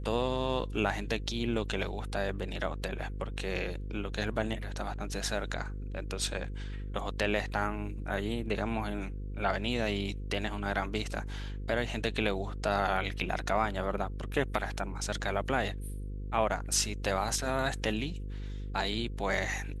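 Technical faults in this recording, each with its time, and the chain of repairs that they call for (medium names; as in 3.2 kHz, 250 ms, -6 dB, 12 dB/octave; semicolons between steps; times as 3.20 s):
buzz 50 Hz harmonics 10 -38 dBFS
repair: de-hum 50 Hz, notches 10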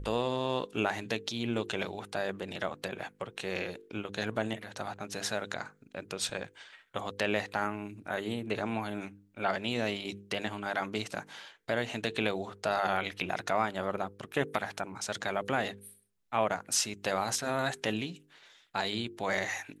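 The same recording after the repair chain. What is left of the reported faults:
nothing left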